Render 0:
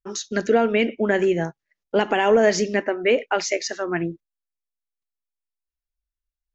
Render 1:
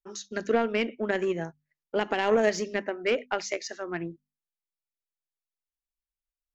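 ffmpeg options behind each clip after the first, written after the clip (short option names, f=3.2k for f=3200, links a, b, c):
-af "bandreject=f=50:t=h:w=6,bandreject=f=100:t=h:w=6,bandreject=f=150:t=h:w=6,bandreject=f=200:t=h:w=6,bandreject=f=250:t=h:w=6,aeval=exprs='0.447*(cos(1*acos(clip(val(0)/0.447,-1,1)))-cos(1*PI/2))+0.0631*(cos(3*acos(clip(val(0)/0.447,-1,1)))-cos(3*PI/2))':c=same,volume=-4.5dB"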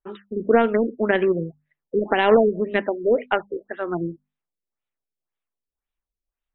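-af "afftfilt=real='re*lt(b*sr/1024,510*pow(4100/510,0.5+0.5*sin(2*PI*1.9*pts/sr)))':imag='im*lt(b*sr/1024,510*pow(4100/510,0.5+0.5*sin(2*PI*1.9*pts/sr)))':win_size=1024:overlap=0.75,volume=8dB"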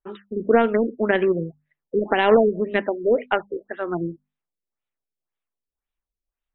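-af anull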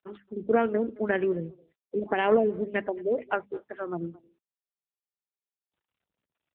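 -filter_complex "[0:a]asplit=2[a][b];[b]adelay=220,highpass=300,lowpass=3.4k,asoftclip=type=hard:threshold=-12.5dB,volume=-22dB[c];[a][c]amix=inputs=2:normalize=0,volume=-6dB" -ar 8000 -c:a libopencore_amrnb -b:a 7950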